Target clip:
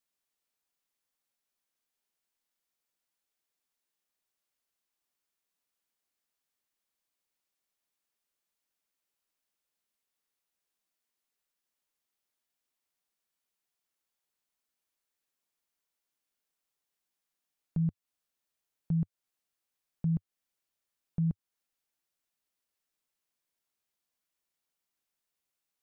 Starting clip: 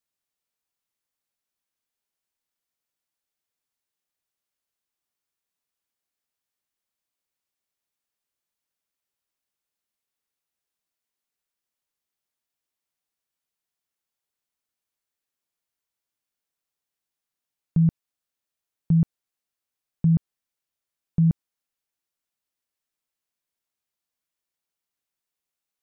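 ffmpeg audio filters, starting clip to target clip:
-af "asetnsamples=n=441:p=0,asendcmd='17.78 equalizer g -4',equalizer=f=99:w=2.8:g=-13.5,alimiter=limit=-24dB:level=0:latency=1:release=249"

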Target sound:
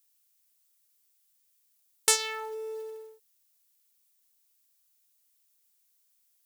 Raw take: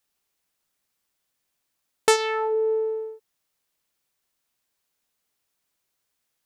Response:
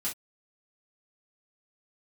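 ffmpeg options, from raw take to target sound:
-af "crystalizer=i=9.5:c=0,bandreject=f=322.5:t=h:w=4,bandreject=f=645:t=h:w=4,bandreject=f=967.5:t=h:w=4,bandreject=f=1.29k:t=h:w=4,bandreject=f=1.6125k:t=h:w=4,bandreject=f=1.935k:t=h:w=4,acrusher=bits=5:mode=log:mix=0:aa=0.000001,volume=-15.5dB"

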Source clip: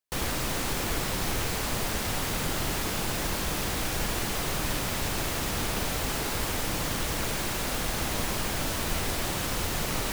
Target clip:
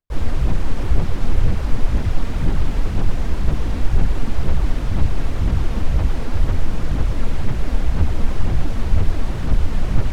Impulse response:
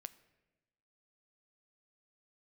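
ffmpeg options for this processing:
-filter_complex "[0:a]aphaser=in_gain=1:out_gain=1:delay=4.5:decay=0.44:speed=2:type=sinusoidal,aemphasis=mode=reproduction:type=riaa,asplit=2[a][b];[b]asetrate=52444,aresample=44100,atempo=0.840896,volume=-4dB[c];[a][c]amix=inputs=2:normalize=0,volume=-4dB"

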